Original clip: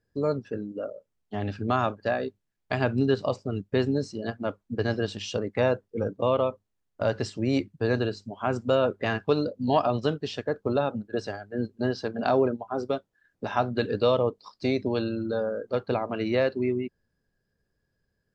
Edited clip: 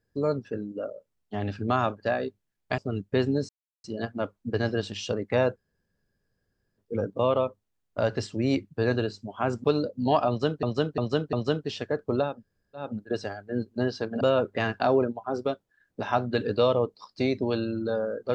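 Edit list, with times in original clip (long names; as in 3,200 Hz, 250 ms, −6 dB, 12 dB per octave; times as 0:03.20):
0:02.78–0:03.38: remove
0:04.09: splice in silence 0.35 s
0:05.81: splice in room tone 1.22 s
0:08.67–0:09.26: move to 0:12.24
0:09.90–0:10.25: repeat, 4 plays
0:10.88: splice in room tone 0.54 s, crossfade 0.24 s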